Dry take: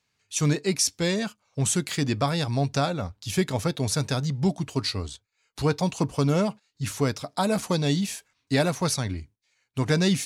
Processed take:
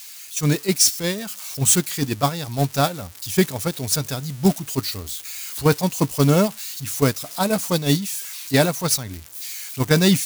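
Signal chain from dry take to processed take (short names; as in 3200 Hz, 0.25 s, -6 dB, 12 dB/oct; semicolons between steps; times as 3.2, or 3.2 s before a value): switching spikes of -21 dBFS; gate -22 dBFS, range -10 dB; AGC gain up to 7.5 dB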